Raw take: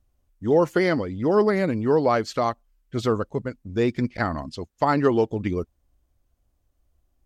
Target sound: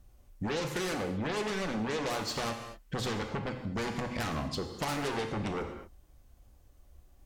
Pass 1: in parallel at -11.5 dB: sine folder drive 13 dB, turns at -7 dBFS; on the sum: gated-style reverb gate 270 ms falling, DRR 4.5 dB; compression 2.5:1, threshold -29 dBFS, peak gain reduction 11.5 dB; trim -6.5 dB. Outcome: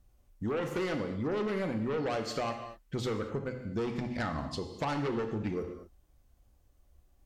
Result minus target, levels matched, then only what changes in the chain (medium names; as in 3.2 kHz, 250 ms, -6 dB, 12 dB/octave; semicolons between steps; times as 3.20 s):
sine folder: distortion -15 dB
change: sine folder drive 21 dB, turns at -7 dBFS